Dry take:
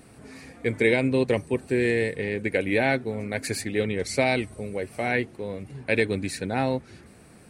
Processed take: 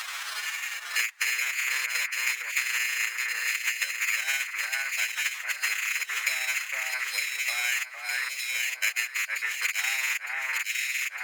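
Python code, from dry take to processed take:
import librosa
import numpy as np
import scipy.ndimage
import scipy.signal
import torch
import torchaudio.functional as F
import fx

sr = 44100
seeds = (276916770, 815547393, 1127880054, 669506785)

y = fx.rattle_buzz(x, sr, strikes_db=-27.0, level_db=-13.0)
y = fx.sample_hold(y, sr, seeds[0], rate_hz=4600.0, jitter_pct=0)
y = fx.high_shelf(y, sr, hz=3300.0, db=4.0)
y = fx.transient(y, sr, attack_db=5, sustain_db=-10)
y = scipy.signal.sosfilt(scipy.signal.butter(4, 1300.0, 'highpass', fs=sr, output='sos'), y)
y = fx.high_shelf(y, sr, hz=11000.0, db=-11.0)
y = fx.stretch_vocoder(y, sr, factor=1.5)
y = fx.echo_alternate(y, sr, ms=455, hz=1900.0, feedback_pct=64, wet_db=-3.5)
y = fx.band_squash(y, sr, depth_pct=100)
y = y * 10.0 ** (-3.5 / 20.0)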